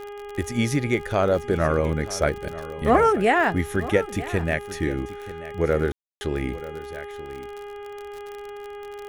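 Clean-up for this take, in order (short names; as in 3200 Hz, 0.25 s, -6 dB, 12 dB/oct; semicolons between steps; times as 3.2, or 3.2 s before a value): de-click; de-hum 409.4 Hz, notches 8; room tone fill 5.92–6.21; inverse comb 0.934 s -15.5 dB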